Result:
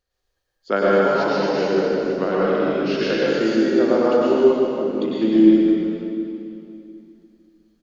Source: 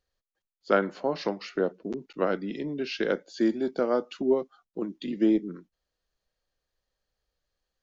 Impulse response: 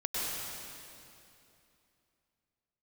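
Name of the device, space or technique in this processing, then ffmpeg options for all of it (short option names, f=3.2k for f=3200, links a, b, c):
cave: -filter_complex "[0:a]aecho=1:1:158:0.355[a];[1:a]atrim=start_sample=2205[b];[a][b]afir=irnorm=-1:irlink=0,volume=2.5dB"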